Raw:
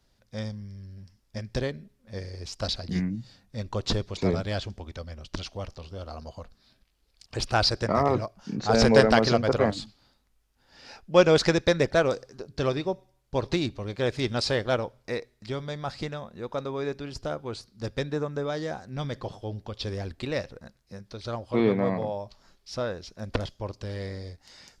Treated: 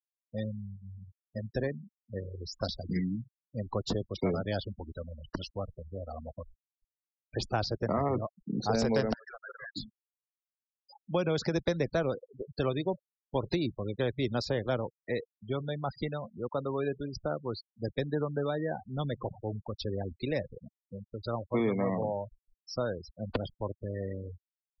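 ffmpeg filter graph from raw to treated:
-filter_complex "[0:a]asettb=1/sr,asplit=3[a][b][c];[a]atrim=end=0.734[d];[b]atrim=start=0.73:end=1.7,asetpts=PTS-STARTPTS,afade=t=in:d=0.004:c=qsin,afade=t=out:st=0.966:d=0.004:c=qsin,highshelf=f=4.3k:g=-7,bandreject=f=50:t=h:w=6,bandreject=f=100:t=h:w=6,bandreject=f=150:t=h:w=6,bandreject=f=200:t=h:w=6,bandreject=f=250:t=h:w=6,bandreject=f=300:t=h:w=6,bandreject=f=350:t=h:w=6[e];[c]atrim=start=1.696[f];[d][e]acrossfade=d=0.004:c1=hsin:c2=qsin[g];[g][f]acrossfade=d=0.004:c1=qsin:c2=hsin,asettb=1/sr,asplit=3[h][i][j];[h]atrim=end=9.134[k];[i]atrim=start=9.13:end=9.76,asetpts=PTS-STARTPTS,afade=t=in:d=0.004:c=qsin,afade=t=out:st=0.626:d=0.004:c=qsin,bandpass=f=1.7k:t=q:w=4.5,aeval=exprs='0.02*(abs(mod(val(0)/0.02+3,4)-2)-1)':c=same[l];[j]atrim=start=9.756[m];[k][l]acrossfade=d=0.004:c1=hsin:c2=qsin[n];[n][m]acrossfade=d=0.004:c1=qsin:c2=hsin,asettb=1/sr,asplit=3[o][p][q];[o]atrim=end=10.964[r];[p]atrim=start=10.96:end=11.56,asetpts=PTS-STARTPTS,afade=t=in:d=0.004:c=qsin,afade=t=out:st=0.596:d=0.004:c=qsin,highpass=74,lowshelf=f=170:g=3.5,acompressor=threshold=-23dB:ratio=2:attack=3.2:release=140:knee=1:detection=peak[s];[q]atrim=start=11.556[t];[r][s]acrossfade=d=0.004:c1=hsin:c2=qsin[u];[u][t]acrossfade=d=0.004:c1=qsin:c2=hsin,afftfilt=real='re*gte(hypot(re,im),0.0251)':imag='im*gte(hypot(re,im),0.0251)':win_size=1024:overlap=0.75,equalizer=f=7.7k:t=o:w=0.55:g=9.5,acrossover=split=110|260|960[v][w][x][y];[v]acompressor=threshold=-46dB:ratio=4[z];[w]acompressor=threshold=-33dB:ratio=4[aa];[x]acompressor=threshold=-30dB:ratio=4[ab];[y]acompressor=threshold=-39dB:ratio=4[ac];[z][aa][ab][ac]amix=inputs=4:normalize=0"

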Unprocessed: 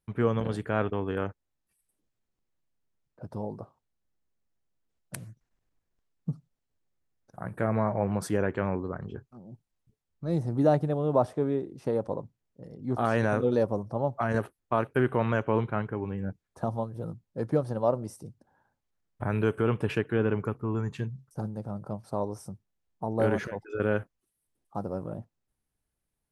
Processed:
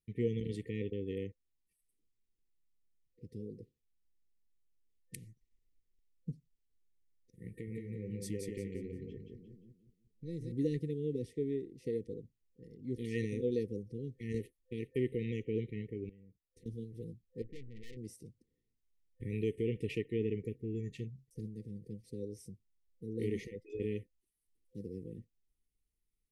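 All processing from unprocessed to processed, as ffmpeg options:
-filter_complex "[0:a]asettb=1/sr,asplit=3[a][b][c];[a]atrim=end=7.504[d];[b]atrim=start=7.5:end=10.52,asetpts=PTS-STARTPTS,afade=t=in:d=0.004:c=qsin,afade=t=out:st=3.016:d=0.004:c=qsin,acompressor=threshold=-32dB:ratio=2:attack=3.2:release=140:knee=1:detection=peak,aecho=1:1:176|352|528|704:0.668|0.221|0.0728|0.024,atrim=end_sample=133182[e];[c]atrim=start=10.516[f];[d][e]acrossfade=d=0.004:c1=hsin:c2=qsin[g];[g][f]acrossfade=d=0.004:c1=qsin:c2=hsin,asettb=1/sr,asplit=3[h][i][j];[h]atrim=end=16.094[k];[i]atrim=start=16.09:end=16.66,asetpts=PTS-STARTPTS,afade=t=in:d=0.004:c=qsin,afade=t=out:st=0.566:d=0.004:c=qsin,agate=range=-10dB:threshold=-55dB:ratio=16:release=100:detection=peak,acompressor=threshold=-48dB:ratio=6:attack=3.2:release=140:knee=1:detection=peak[l];[j]atrim=start=16.656[m];[k][l]acrossfade=d=0.004:c1=hsin:c2=qsin[n];[n][m]acrossfade=d=0.004:c1=qsin:c2=hsin,asettb=1/sr,asplit=3[o][p][q];[o]atrim=end=17.424[r];[p]atrim=start=17.42:end=17.97,asetpts=PTS-STARTPTS,afade=t=in:d=0.004:c=qsin,afade=t=out:st=0.546:d=0.004:c=qsin,lowpass=f=1.3k:w=0.5412,lowpass=f=1.3k:w=1.3066,aeval=exprs='(tanh(89.1*val(0)+0.5)-tanh(0.5))/89.1':c=same[s];[q]atrim=start=17.966[t];[r][s]acrossfade=d=0.004:c1=hsin:c2=qsin[u];[u][t]acrossfade=d=0.004:c1=qsin:c2=hsin,afftfilt=real='re*(1-between(b*sr/4096,510,1800))':imag='im*(1-between(b*sr/4096,510,1800))':win_size=4096:overlap=0.75,asubboost=boost=3.5:cutoff=51,volume=-7dB"

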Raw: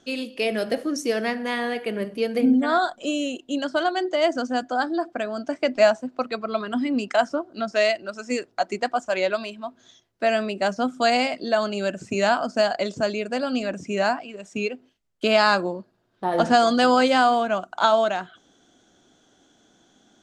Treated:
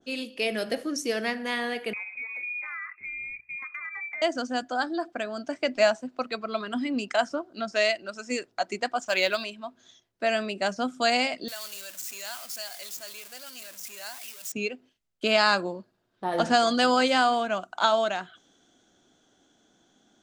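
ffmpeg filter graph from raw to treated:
-filter_complex "[0:a]asettb=1/sr,asplit=3[a][b][c];[a]atrim=end=1.934[d];[b]atrim=start=1.93:end=4.22,asetpts=PTS-STARTPTS,afade=t=in:d=0.004:c=qsin,afade=t=out:st=2.286:d=0.004:c=qsin,lowpass=f=2.3k:t=q:w=0.5098,lowpass=f=2.3k:t=q:w=0.6013,lowpass=f=2.3k:t=q:w=0.9,lowpass=f=2.3k:t=q:w=2.563,afreqshift=-2700,acompressor=threshold=-31dB:ratio=6:attack=3.2:release=140:knee=1:detection=peak[e];[c]atrim=start=4.216[f];[d][e]acrossfade=d=0.004:c1=hsin:c2=qsin[g];[g][f]acrossfade=d=0.004:c1=qsin:c2=hsin,asettb=1/sr,asplit=3[h][i][j];[h]atrim=end=9.014[k];[i]atrim=start=9.01:end=9.44,asetpts=PTS-STARTPTS,afade=t=in:d=0.004:c=qsin,afade=t=out:st=0.426:d=0.004:c=qsin,lowpass=5.9k,highshelf=f=2.5k:g=10.5,acrusher=bits=8:mode=log:mix=0:aa=0.000001[l];[j]atrim=start=9.436[m];[k][l]acrossfade=d=0.004:c1=hsin:c2=qsin[n];[n][m]acrossfade=d=0.004:c1=qsin:c2=hsin,asettb=1/sr,asplit=3[o][p][q];[o]atrim=end=11.484[r];[p]atrim=start=11.48:end=14.52,asetpts=PTS-STARTPTS,afade=t=in:d=0.004:c=qsin,afade=t=out:st=3.036:d=0.004:c=qsin,aeval=exprs='val(0)+0.5*0.0531*sgn(val(0))':c=same,aderivative[s];[q]atrim=start=14.516[t];[r][s]acrossfade=d=0.004:c1=hsin:c2=qsin[u];[u][t]acrossfade=d=0.004:c1=qsin:c2=hsin,bandreject=f=60:t=h:w=6,bandreject=f=120:t=h:w=6,adynamicequalizer=threshold=0.0178:dfrequency=1500:dqfactor=0.7:tfrequency=1500:tqfactor=0.7:attack=5:release=100:ratio=0.375:range=2.5:mode=boostabove:tftype=highshelf,volume=-5dB"

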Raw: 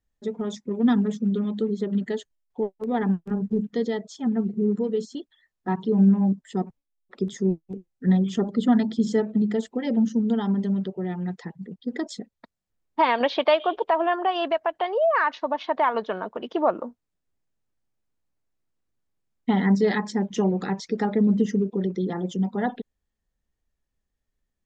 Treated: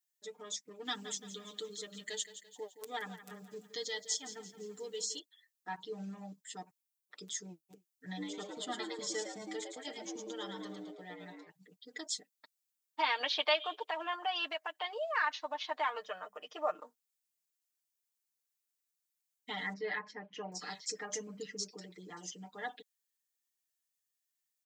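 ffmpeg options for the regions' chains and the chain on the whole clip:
-filter_complex "[0:a]asettb=1/sr,asplit=3[a][b][c];[a]atrim=end=0.854[d];[b]atrim=start=0.85:end=5.19,asetpts=PTS-STARTPTS,afade=t=in:d=0.004:c=qsin,afade=t=out:st=4.336:d=0.004:c=qsin,highshelf=f=3.5k:g=9,aecho=1:1:170|340|510|680|850:0.224|0.103|0.0474|0.0218|0.01,atrim=end_sample=191394[e];[c]atrim=start=5.186[f];[d][e]acrossfade=d=0.004:c1=hsin:c2=qsin[g];[g][f]acrossfade=d=0.004:c1=qsin:c2=hsin,asettb=1/sr,asplit=3[h][i][j];[h]atrim=end=8.054[k];[i]atrim=start=8.05:end=11.49,asetpts=PTS-STARTPTS,afade=t=in:d=0.004:c=qsin,afade=t=out:st=3.436:d=0.004:c=qsin,bandreject=f=137.7:t=h:w=4,bandreject=f=275.4:t=h:w=4,bandreject=f=413.1:t=h:w=4,bandreject=f=550.8:t=h:w=4,bandreject=f=688.5:t=h:w=4,bandreject=f=826.2:t=h:w=4,bandreject=f=963.9:t=h:w=4,bandreject=f=1.1016k:t=h:w=4,bandreject=f=1.2393k:t=h:w=4,bandreject=f=1.377k:t=h:w=4,bandreject=f=1.5147k:t=h:w=4,bandreject=f=1.6524k:t=h:w=4,bandreject=f=1.7901k:t=h:w=4,bandreject=f=1.9278k:t=h:w=4,bandreject=f=2.0655k:t=h:w=4,bandreject=f=2.2032k:t=h:w=4,bandreject=f=2.3409k:t=h:w=4,bandreject=f=2.4786k:t=h:w=4,bandreject=f=2.6163k:t=h:w=4,bandreject=f=2.754k:t=h:w=4,bandreject=f=2.8917k:t=h:w=4,bandreject=f=3.0294k:t=h:w=4,bandreject=f=3.1671k:t=h:w=4,bandreject=f=3.3048k:t=h:w=4,bandreject=f=3.4425k:t=h:w=4,bandreject=f=3.5802k:t=h:w=4,bandreject=f=3.7179k:t=h:w=4,bandreject=f=3.8556k:t=h:w=4,bandreject=f=3.9933k:t=h:w=4,bandreject=f=4.131k:t=h:w=4,bandreject=f=4.2687k:t=h:w=4,bandreject=f=4.4064k:t=h:w=4,bandreject=f=4.5441k:t=h:w=4,bandreject=f=4.6818k:t=h:w=4,bandreject=f=4.8195k:t=h:w=4,bandreject=f=4.9572k:t=h:w=4,agate=range=-20dB:threshold=-31dB:ratio=16:release=100:detection=peak,asplit=6[l][m][n][o][p][q];[m]adelay=109,afreqshift=110,volume=-5dB[r];[n]adelay=218,afreqshift=220,volume=-12.7dB[s];[o]adelay=327,afreqshift=330,volume=-20.5dB[t];[p]adelay=436,afreqshift=440,volume=-28.2dB[u];[q]adelay=545,afreqshift=550,volume=-36dB[v];[l][r][s][t][u][v]amix=inputs=6:normalize=0,atrim=end_sample=151704[w];[j]atrim=start=11.486[x];[k][w]acrossfade=d=0.004:c1=hsin:c2=qsin[y];[y][x]acrossfade=d=0.004:c1=qsin:c2=hsin,asettb=1/sr,asplit=3[z][aa][ab];[z]atrim=end=15.974[ac];[aa]atrim=start=15.97:end=16.75,asetpts=PTS-STARTPTS,afade=t=in:d=0.004:c=qsin,afade=t=out:st=0.776:d=0.004:c=qsin,equalizer=f=3.9k:t=o:w=0.45:g=-11,bandreject=f=50:t=h:w=6,bandreject=f=100:t=h:w=6,bandreject=f=150:t=h:w=6,bandreject=f=200:t=h:w=6,aecho=1:1:1.6:0.46,atrim=end_sample=34398[ad];[ab]atrim=start=16.746[ae];[ac][ad]acrossfade=d=0.004:c1=hsin:c2=qsin[af];[af][ae]acrossfade=d=0.004:c1=qsin:c2=hsin,asettb=1/sr,asplit=3[ag][ah][ai];[ag]atrim=end=19.734[aj];[ah]atrim=start=19.73:end=22.46,asetpts=PTS-STARTPTS,afade=t=in:d=0.004:c=qsin,afade=t=out:st=2.726:d=0.004:c=qsin,equalizer=f=3.6k:t=o:w=0.23:g=-11,acrossover=split=3400[ak][al];[al]adelay=790[am];[ak][am]amix=inputs=2:normalize=0,atrim=end_sample=120393[an];[ai]atrim=start=22.456[ao];[aj][an]acrossfade=d=0.004:c1=hsin:c2=qsin[ap];[ap][ao]acrossfade=d=0.004:c1=qsin:c2=hsin,aderivative,aecho=1:1:6.6:0.88,volume=2.5dB"

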